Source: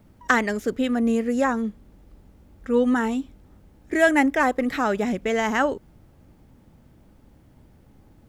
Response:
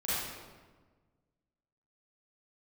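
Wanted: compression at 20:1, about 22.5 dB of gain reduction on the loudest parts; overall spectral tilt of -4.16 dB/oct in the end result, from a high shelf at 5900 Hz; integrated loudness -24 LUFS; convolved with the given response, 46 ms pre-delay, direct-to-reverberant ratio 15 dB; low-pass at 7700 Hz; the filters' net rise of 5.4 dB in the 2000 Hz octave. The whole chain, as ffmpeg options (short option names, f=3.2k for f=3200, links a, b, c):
-filter_complex "[0:a]lowpass=7.7k,equalizer=f=2k:t=o:g=7.5,highshelf=f=5.9k:g=-9,acompressor=threshold=-33dB:ratio=20,asplit=2[a][b];[1:a]atrim=start_sample=2205,adelay=46[c];[b][c]afir=irnorm=-1:irlink=0,volume=-22.5dB[d];[a][d]amix=inputs=2:normalize=0,volume=14dB"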